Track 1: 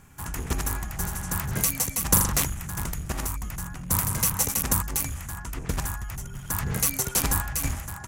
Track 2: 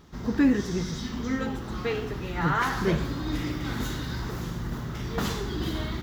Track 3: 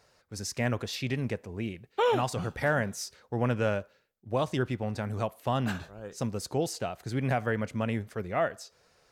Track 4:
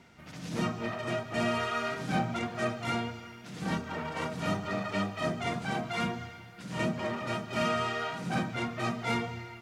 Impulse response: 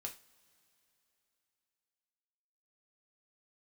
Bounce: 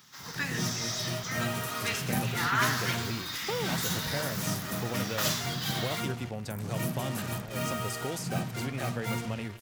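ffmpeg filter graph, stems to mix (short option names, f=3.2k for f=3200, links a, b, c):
-filter_complex "[0:a]highpass=f=130:w=0.5412,highpass=f=130:w=1.3066,tiltshelf=f=700:g=9.5,volume=-16.5dB[a];[1:a]highpass=1.4k,equalizer=f=5.4k:t=o:w=0.4:g=3,volume=2.5dB[b];[2:a]acrossover=split=720|2400[c][d][e];[c]acompressor=threshold=-33dB:ratio=4[f];[d]acompressor=threshold=-46dB:ratio=4[g];[e]acompressor=threshold=-42dB:ratio=4[h];[f][g][h]amix=inputs=3:normalize=0,adelay=1500,volume=-1dB[i];[3:a]equalizer=f=130:t=o:w=0.7:g=11.5,acrusher=bits=5:mix=0:aa=0.5,volume=-6dB[j];[a][b][i][j]amix=inputs=4:normalize=0,highshelf=f=6.9k:g=9.5"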